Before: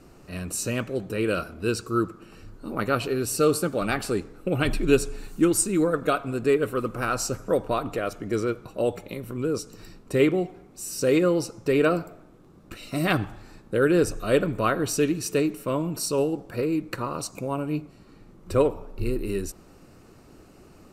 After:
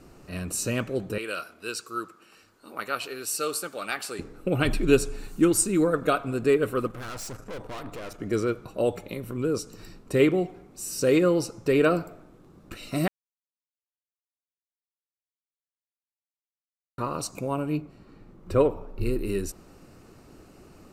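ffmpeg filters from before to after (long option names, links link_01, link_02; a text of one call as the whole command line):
ffmpeg -i in.wav -filter_complex "[0:a]asettb=1/sr,asplit=3[link_01][link_02][link_03];[link_01]atrim=end=1.184[link_04];[link_02]atrim=start=1.18:end=4.19,asetpts=PTS-STARTPTS,afade=type=in:duration=0.004:curve=qsin,afade=type=out:start_time=3.006:duration=0.004:curve=qsin,highpass=frequency=1400:poles=1[link_05];[link_03]atrim=start=4.186[link_06];[link_04][link_05]acrossfade=duration=0.004:curve1=hsin:curve2=qsin[link_07];[link_07][link_06]acrossfade=duration=0.004:curve1=qsin:curve2=hsin,asettb=1/sr,asplit=3[link_08][link_09][link_10];[link_08]atrim=end=6.874[link_11];[link_09]atrim=start=6.87:end=8.2,asetpts=PTS-STARTPTS,afade=type=in:duration=0.004:curve=qsin,afade=type=out:start_time=1.326:duration=0.004:curve=qsin,aeval=exprs='(tanh(56.2*val(0)+0.65)-tanh(0.65))/56.2':channel_layout=same[link_12];[link_10]atrim=start=8.196[link_13];[link_11][link_12]acrossfade=duration=0.004:curve1=hsin:curve2=qsin[link_14];[link_14][link_13]acrossfade=duration=0.004:curve1=qsin:curve2=hsin,asettb=1/sr,asplit=3[link_15][link_16][link_17];[link_15]atrim=end=17.774[link_18];[link_16]atrim=start=17.77:end=19.01,asetpts=PTS-STARTPTS,afade=type=in:duration=0.004:curve=qsin,afade=type=out:start_time=1.236:duration=0.004:curve=qsin,equalizer=frequency=9400:width_type=o:width=2.3:gain=-7.5[link_19];[link_17]atrim=start=19.006[link_20];[link_18][link_19]acrossfade=duration=0.004:curve1=hsin:curve2=qsin[link_21];[link_21][link_20]acrossfade=duration=0.004:curve1=qsin:curve2=hsin,asplit=3[link_22][link_23][link_24];[link_22]atrim=end=13.08,asetpts=PTS-STARTPTS,afade=type=out:start_time=13.076:duration=0.004:curve=hsin[link_25];[link_23]atrim=start=13.08:end=16.98,asetpts=PTS-STARTPTS,volume=0[link_26];[link_24]atrim=start=16.98,asetpts=PTS-STARTPTS,afade=type=in:duration=0.004:curve=hsin[link_27];[link_25][link_26][link_27]concat=n=3:v=0:a=1" out.wav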